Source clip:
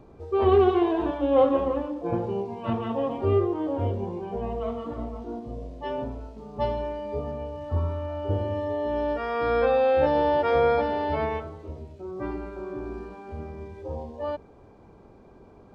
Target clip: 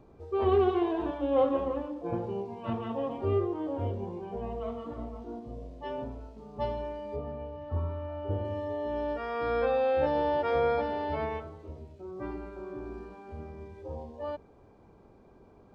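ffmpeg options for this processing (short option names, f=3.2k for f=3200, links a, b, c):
-filter_complex "[0:a]asettb=1/sr,asplit=3[a][b][c];[a]atrim=end=7.164[d];[b]atrim=start=7.16:end=8.45,asetpts=PTS-STARTPTS,afade=t=in:d=0.004:c=qsin,afade=t=out:st=1.286:d=0.004:c=qsin,lowpass=3.4k[e];[c]atrim=start=8.446[f];[d][e]acrossfade=d=0.004:c1=hsin:c2=qsin[g];[g][f]acrossfade=d=0.004:c1=qsin:c2=hsin,volume=-5.5dB"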